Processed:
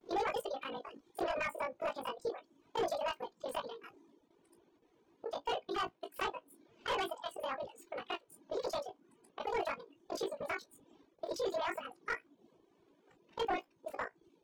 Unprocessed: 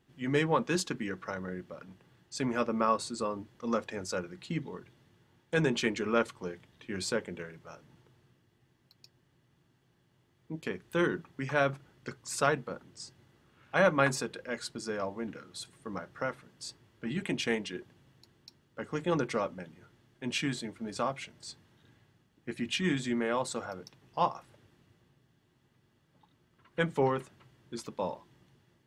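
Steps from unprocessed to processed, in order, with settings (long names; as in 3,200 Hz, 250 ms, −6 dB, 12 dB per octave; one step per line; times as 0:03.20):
reversed piece by piece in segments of 36 ms
phase-vocoder pitch shift with formants kept +5.5 semitones
flutter between parallel walls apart 6 metres, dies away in 0.26 s
wrong playback speed 7.5 ips tape played at 15 ips
in parallel at −2 dB: downward compressor, threshold −45 dBFS, peak gain reduction 22 dB
on the sum: hard clipping −26 dBFS, distortion −10 dB
reverb reduction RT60 0.56 s
noise gate with hold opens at −57 dBFS
low-pass filter 1,700 Hz 6 dB per octave
level −2.5 dB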